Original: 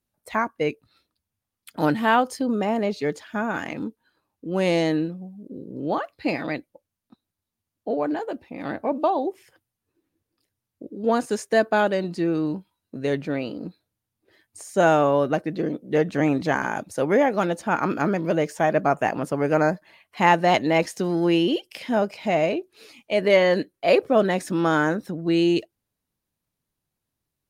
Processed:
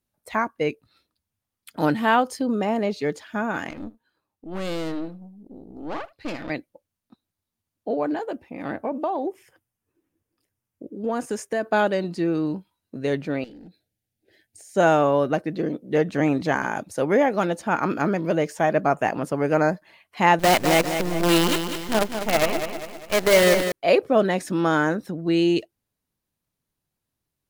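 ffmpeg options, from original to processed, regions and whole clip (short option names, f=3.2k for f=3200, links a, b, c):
-filter_complex "[0:a]asettb=1/sr,asplit=3[a][b][c];[a]atrim=end=3.704[d];[b]atrim=start=3.7:end=6.5,asetpts=PTS-STARTPTS,afade=t=in:d=0.004:c=qsin,afade=t=out:st=2.796:d=0.004:c=qsin,aeval=exprs='(tanh(20*val(0)+0.8)-tanh(0.8))/20':c=same,aecho=1:1:74:0.0891,atrim=end_sample=123480[e];[c]atrim=start=6.496[f];[d][e]acrossfade=d=0.004:c1=hsin:c2=qsin[g];[g][f]acrossfade=d=0.004:c1=qsin:c2=hsin,asettb=1/sr,asplit=3[h][i][j];[h]atrim=end=8.324[k];[i]atrim=start=8.32:end=11.67,asetpts=PTS-STARTPTS,afade=t=in:d=0.004:c=qsin,afade=t=out:st=3.346:d=0.004:c=qsin,equalizer=f=4.1k:t=o:w=0.45:g=-8,acompressor=threshold=-22dB:ratio=3:attack=3.2:release=140:knee=1:detection=peak[l];[j]atrim=start=11.666[m];[k][l]acrossfade=d=0.004:c1=hsin:c2=qsin[n];[n][m]acrossfade=d=0.004:c1=qsin:c2=hsin,asettb=1/sr,asplit=3[o][p][q];[o]atrim=end=13.444[r];[p]atrim=start=13.44:end=14.75,asetpts=PTS-STARTPTS,afade=t=in:d=0.004:c=qsin,afade=t=out:st=1.306:d=0.004:c=qsin,volume=32.5dB,asoftclip=hard,volume=-32.5dB,acompressor=threshold=-45dB:ratio=3:attack=3.2:release=140:knee=1:detection=peak,asuperstop=centerf=1100:order=4:qfactor=1.5[s];[q]atrim=start=14.746[t];[r][s]acrossfade=d=0.004:c1=hsin:c2=qsin[u];[u][t]acrossfade=d=0.004:c1=qsin:c2=hsin,asettb=1/sr,asplit=3[v][w][x];[v]atrim=end=20.394[y];[w]atrim=start=20.39:end=23.72,asetpts=PTS-STARTPTS,afade=t=in:d=0.004:c=qsin,afade=t=out:st=3.326:d=0.004:c=qsin,equalizer=f=63:t=o:w=0.43:g=4,acrusher=bits=4:dc=4:mix=0:aa=0.000001,aecho=1:1:200|400|600|800|1000:0.398|0.183|0.0842|0.0388|0.0178,atrim=end_sample=146853[z];[x]atrim=start=23.716[aa];[y][z]acrossfade=d=0.004:c1=hsin:c2=qsin[ab];[ab][aa]acrossfade=d=0.004:c1=qsin:c2=hsin"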